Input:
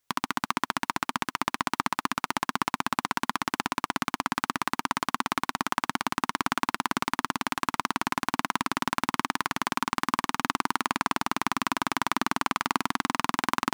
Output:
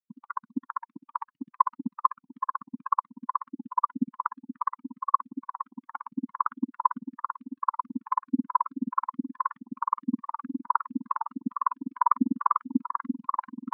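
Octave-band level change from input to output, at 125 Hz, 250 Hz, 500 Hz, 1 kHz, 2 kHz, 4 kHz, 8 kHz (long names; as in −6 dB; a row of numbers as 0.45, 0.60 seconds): can't be measured, +0.5 dB, below −15 dB, +0.5 dB, −17.0 dB, below −40 dB, below −40 dB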